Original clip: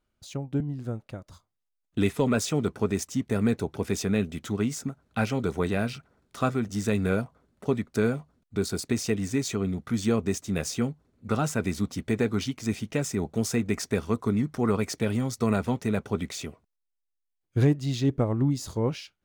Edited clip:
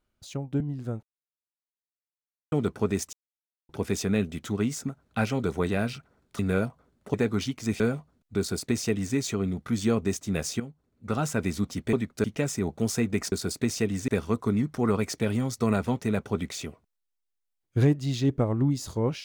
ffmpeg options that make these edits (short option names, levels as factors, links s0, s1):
-filter_complex "[0:a]asplit=13[s0][s1][s2][s3][s4][s5][s6][s7][s8][s9][s10][s11][s12];[s0]atrim=end=1.03,asetpts=PTS-STARTPTS,afade=t=out:st=1.026:d=0.004:c=hsin[s13];[s1]atrim=start=1.03:end=2.52,asetpts=PTS-STARTPTS,volume=0[s14];[s2]atrim=start=2.52:end=3.13,asetpts=PTS-STARTPTS,afade=t=in:d=0.004:c=hsin,afade=t=out:st=0.606:d=0.004:c=hsin[s15];[s3]atrim=start=3.13:end=3.69,asetpts=PTS-STARTPTS,volume=0[s16];[s4]atrim=start=3.69:end=6.392,asetpts=PTS-STARTPTS,afade=t=in:d=0.004:c=hsin[s17];[s5]atrim=start=6.948:end=7.702[s18];[s6]atrim=start=12.138:end=12.802[s19];[s7]atrim=start=8.008:end=10.81,asetpts=PTS-STARTPTS,afade=t=out:st=2.798:d=0.004:c=hsin:silence=0.237137[s20];[s8]atrim=start=10.81:end=12.142,asetpts=PTS-STARTPTS,afade=t=in:d=0.74:silence=0.237137[s21];[s9]atrim=start=7.698:end=8.012[s22];[s10]atrim=start=12.798:end=13.882[s23];[s11]atrim=start=8.598:end=9.362[s24];[s12]atrim=start=13.878[s25];[s13][s14][s15][s16][s17]concat=n=5:v=0:a=1[s26];[s26][s18]acrossfade=d=0.004:c1=hsin:c2=hsin[s27];[s27][s19]acrossfade=d=0.004:c1=hsin:c2=hsin[s28];[s20][s21]concat=n=2:v=0:a=1[s29];[s28][s29]acrossfade=d=0.004:c1=hsin:c2=hsin[s30];[s30][s22]acrossfade=d=0.004:c1=hsin:c2=hsin[s31];[s31][s23]acrossfade=d=0.004:c1=hsin:c2=hsin[s32];[s32][s24]acrossfade=d=0.004:c1=hsin:c2=hsin[s33];[s33][s25]acrossfade=d=0.004:c1=hsin:c2=hsin"